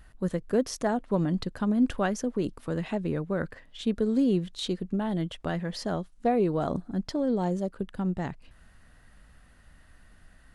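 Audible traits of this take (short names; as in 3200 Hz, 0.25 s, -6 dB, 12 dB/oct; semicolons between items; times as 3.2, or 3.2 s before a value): noise floor -56 dBFS; spectral tilt -6.5 dB/oct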